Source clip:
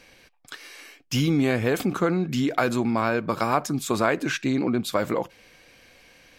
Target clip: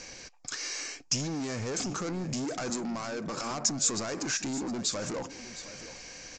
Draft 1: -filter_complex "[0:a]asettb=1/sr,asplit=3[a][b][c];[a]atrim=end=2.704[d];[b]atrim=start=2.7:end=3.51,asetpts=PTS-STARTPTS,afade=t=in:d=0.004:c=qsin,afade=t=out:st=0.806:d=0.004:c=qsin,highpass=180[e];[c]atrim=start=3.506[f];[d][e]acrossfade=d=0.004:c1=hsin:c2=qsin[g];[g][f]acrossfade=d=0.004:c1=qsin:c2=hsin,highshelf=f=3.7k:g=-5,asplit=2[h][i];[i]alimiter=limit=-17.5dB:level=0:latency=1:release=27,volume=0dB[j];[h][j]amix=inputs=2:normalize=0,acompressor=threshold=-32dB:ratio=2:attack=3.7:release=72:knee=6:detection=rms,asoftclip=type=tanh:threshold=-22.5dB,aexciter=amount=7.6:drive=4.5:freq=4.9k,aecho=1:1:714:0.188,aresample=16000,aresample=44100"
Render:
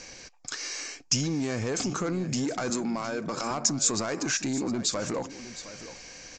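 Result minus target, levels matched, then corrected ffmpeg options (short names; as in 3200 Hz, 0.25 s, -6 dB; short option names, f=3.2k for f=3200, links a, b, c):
soft clip: distortion -9 dB
-filter_complex "[0:a]asettb=1/sr,asplit=3[a][b][c];[a]atrim=end=2.704[d];[b]atrim=start=2.7:end=3.51,asetpts=PTS-STARTPTS,afade=t=in:d=0.004:c=qsin,afade=t=out:st=0.806:d=0.004:c=qsin,highpass=180[e];[c]atrim=start=3.506[f];[d][e]acrossfade=d=0.004:c1=hsin:c2=qsin[g];[g][f]acrossfade=d=0.004:c1=qsin:c2=hsin,highshelf=f=3.7k:g=-5,asplit=2[h][i];[i]alimiter=limit=-17.5dB:level=0:latency=1:release=27,volume=0dB[j];[h][j]amix=inputs=2:normalize=0,acompressor=threshold=-32dB:ratio=2:attack=3.7:release=72:knee=6:detection=rms,asoftclip=type=tanh:threshold=-31dB,aexciter=amount=7.6:drive=4.5:freq=4.9k,aecho=1:1:714:0.188,aresample=16000,aresample=44100"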